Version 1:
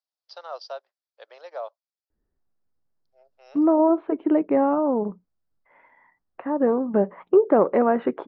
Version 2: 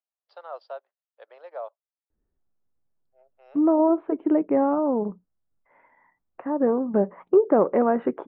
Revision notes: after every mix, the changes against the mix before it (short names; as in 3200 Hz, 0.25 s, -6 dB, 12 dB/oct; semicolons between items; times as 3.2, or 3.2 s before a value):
master: add air absorption 440 m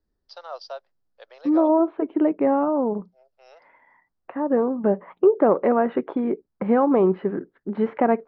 second voice: entry -2.10 s; master: remove air absorption 440 m